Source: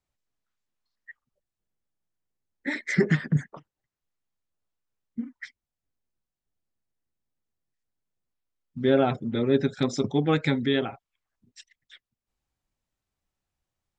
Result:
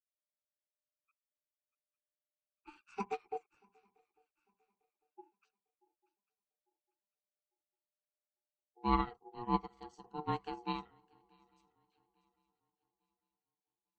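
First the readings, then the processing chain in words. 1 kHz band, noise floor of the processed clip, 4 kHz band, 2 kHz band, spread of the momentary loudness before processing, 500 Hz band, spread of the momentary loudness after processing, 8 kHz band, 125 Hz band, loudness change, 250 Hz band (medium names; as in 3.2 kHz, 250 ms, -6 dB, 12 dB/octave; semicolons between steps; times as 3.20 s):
-2.0 dB, under -85 dBFS, -16.5 dB, -20.5 dB, 16 LU, -19.5 dB, 14 LU, no reading, -19.0 dB, -13.0 dB, -16.5 dB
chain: harmonic-percussive split percussive -10 dB; on a send: shuffle delay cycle 849 ms, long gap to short 3:1, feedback 32%, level -15.5 dB; on the sum: ring modulator 600 Hz; treble shelf 4.7 kHz +11.5 dB; upward expansion 2.5:1, over -35 dBFS; trim -4.5 dB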